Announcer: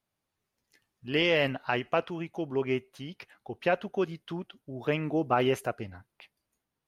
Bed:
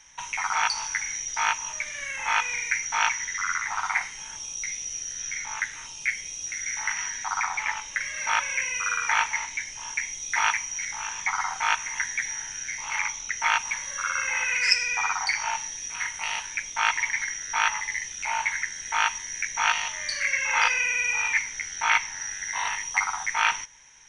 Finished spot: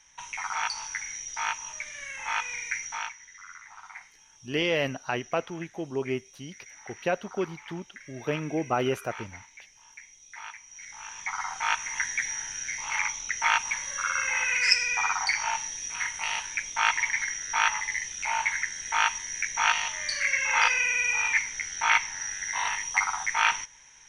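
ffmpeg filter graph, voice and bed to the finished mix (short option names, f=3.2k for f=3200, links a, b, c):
-filter_complex "[0:a]adelay=3400,volume=-1dB[a];[1:a]volume=12.5dB,afade=t=out:st=2.85:d=0.29:silence=0.223872,afade=t=in:st=10.63:d=1.45:silence=0.125893[b];[a][b]amix=inputs=2:normalize=0"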